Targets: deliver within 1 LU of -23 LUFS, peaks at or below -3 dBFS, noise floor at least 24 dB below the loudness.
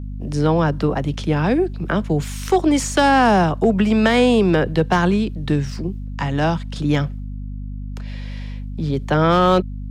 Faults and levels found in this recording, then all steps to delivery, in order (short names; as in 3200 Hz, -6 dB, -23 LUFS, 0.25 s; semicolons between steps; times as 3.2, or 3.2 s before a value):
clipped 0.6%; flat tops at -7.5 dBFS; hum 50 Hz; harmonics up to 250 Hz; hum level -27 dBFS; loudness -18.5 LUFS; peak -7.5 dBFS; loudness target -23.0 LUFS
-> clip repair -7.5 dBFS; notches 50/100/150/200/250 Hz; gain -4.5 dB